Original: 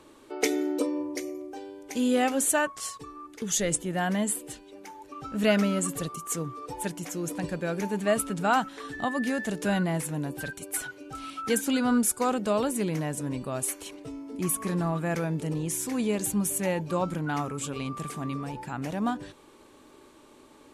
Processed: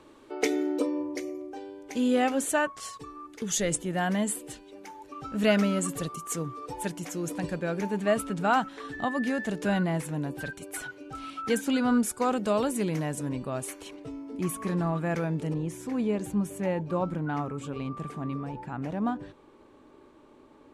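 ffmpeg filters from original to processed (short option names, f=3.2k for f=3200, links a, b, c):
-af "asetnsamples=n=441:p=0,asendcmd='2.93 lowpass f 8500;7.59 lowpass f 4100;12.33 lowpass f 9100;13.29 lowpass f 3500;15.54 lowpass f 1300',lowpass=f=4.1k:p=1"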